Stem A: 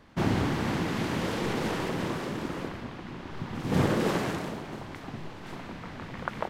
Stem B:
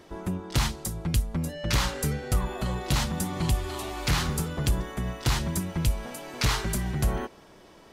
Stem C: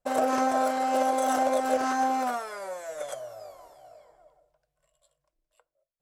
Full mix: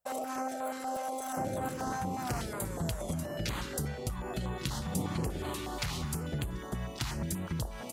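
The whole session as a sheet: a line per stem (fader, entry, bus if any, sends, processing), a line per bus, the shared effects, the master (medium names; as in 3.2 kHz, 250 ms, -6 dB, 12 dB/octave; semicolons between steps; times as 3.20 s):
-12.0 dB, 1.20 s, no bus, no send, low-pass 1.2 kHz
-2.0 dB, 1.75 s, bus A, no send, compression, threshold -24 dBFS, peak gain reduction 5.5 dB
-2.5 dB, 0.00 s, bus A, no send, treble shelf 10 kHz +12 dB; peak limiter -23 dBFS, peak gain reduction 10 dB
bus A: 0.0 dB, compression, threshold -30 dBFS, peak gain reduction 6 dB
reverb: none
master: high-pass 52 Hz; step-sequenced notch 8.3 Hz 310–5400 Hz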